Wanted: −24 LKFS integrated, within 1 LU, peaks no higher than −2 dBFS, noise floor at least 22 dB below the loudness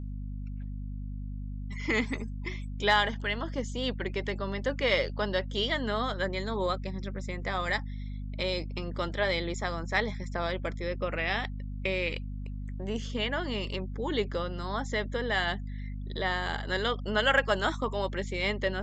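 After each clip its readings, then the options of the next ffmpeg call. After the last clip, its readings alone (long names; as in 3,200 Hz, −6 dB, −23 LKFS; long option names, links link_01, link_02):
mains hum 50 Hz; hum harmonics up to 250 Hz; level of the hum −34 dBFS; integrated loudness −31.5 LKFS; sample peak −11.0 dBFS; target loudness −24.0 LKFS
→ -af "bandreject=frequency=50:width_type=h:width=6,bandreject=frequency=100:width_type=h:width=6,bandreject=frequency=150:width_type=h:width=6,bandreject=frequency=200:width_type=h:width=6,bandreject=frequency=250:width_type=h:width=6"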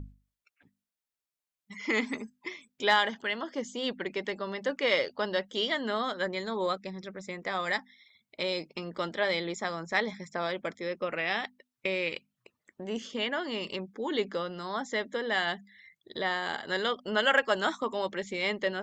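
mains hum none found; integrated loudness −31.5 LKFS; sample peak −11.0 dBFS; target loudness −24.0 LKFS
→ -af "volume=7.5dB"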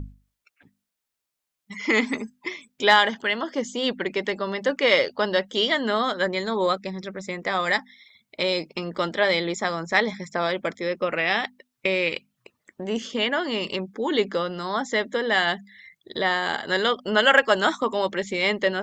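integrated loudness −24.0 LKFS; sample peak −3.5 dBFS; background noise floor −83 dBFS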